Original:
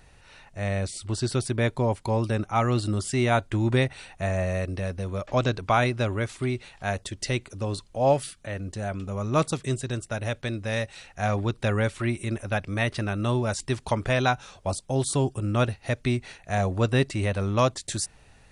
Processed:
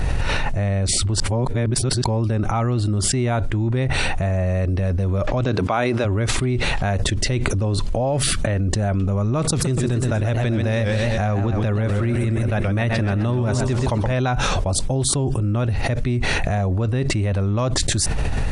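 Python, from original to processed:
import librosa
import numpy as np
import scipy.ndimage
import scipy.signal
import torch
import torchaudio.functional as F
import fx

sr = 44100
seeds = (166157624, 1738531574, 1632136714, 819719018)

y = fx.highpass(x, sr, hz=fx.line((5.44, 150.0), (6.04, 320.0)), slope=12, at=(5.44, 6.04), fade=0.02)
y = fx.echo_warbled(y, sr, ms=127, feedback_pct=55, rate_hz=2.8, cents=144, wet_db=-9, at=(9.45, 14.13))
y = fx.edit(y, sr, fx.reverse_span(start_s=1.2, length_s=0.84), tone=tone)
y = fx.tilt_eq(y, sr, slope=-2.0)
y = fx.env_flatten(y, sr, amount_pct=100)
y = y * 10.0 ** (-5.5 / 20.0)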